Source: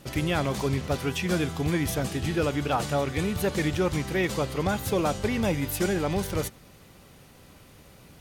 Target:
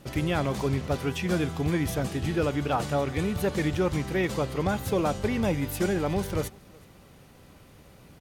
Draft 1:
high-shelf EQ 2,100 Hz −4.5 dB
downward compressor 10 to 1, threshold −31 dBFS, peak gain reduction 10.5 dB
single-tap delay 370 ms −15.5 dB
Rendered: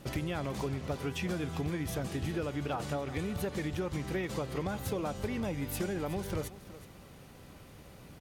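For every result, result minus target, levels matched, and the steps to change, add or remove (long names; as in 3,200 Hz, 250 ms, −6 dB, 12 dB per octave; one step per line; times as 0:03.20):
downward compressor: peak gain reduction +10.5 dB; echo-to-direct +10.5 dB
remove: downward compressor 10 to 1, threshold −31 dBFS, peak gain reduction 10.5 dB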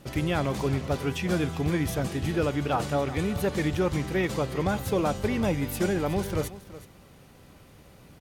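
echo-to-direct +10.5 dB
change: single-tap delay 370 ms −26 dB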